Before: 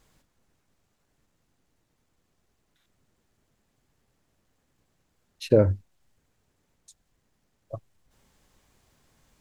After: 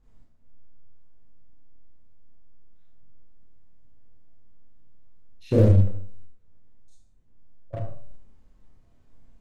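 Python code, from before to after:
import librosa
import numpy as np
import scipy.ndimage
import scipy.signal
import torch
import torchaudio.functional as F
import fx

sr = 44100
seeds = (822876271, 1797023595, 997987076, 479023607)

p1 = fx.tilt_eq(x, sr, slope=-3.5)
p2 = fx.rev_schroeder(p1, sr, rt60_s=0.48, comb_ms=25, drr_db=-7.0)
p3 = fx.fuzz(p2, sr, gain_db=20.0, gate_db=-29.0)
p4 = p2 + (p3 * librosa.db_to_amplitude(-5.5))
p5 = fx.comb_fb(p4, sr, f0_hz=98.0, decay_s=0.53, harmonics='all', damping=0.0, mix_pct=70)
p6 = fx.dynamic_eq(p5, sr, hz=1000.0, q=0.74, threshold_db=-31.0, ratio=4.0, max_db=-5)
y = p6 * librosa.db_to_amplitude(-4.0)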